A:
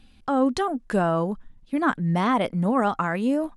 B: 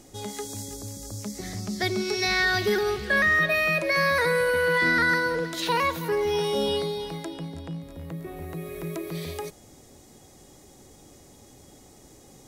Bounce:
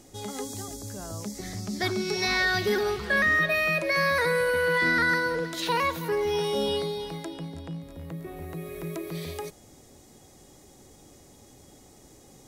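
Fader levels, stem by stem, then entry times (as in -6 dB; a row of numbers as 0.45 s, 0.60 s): -19.5 dB, -1.5 dB; 0.00 s, 0.00 s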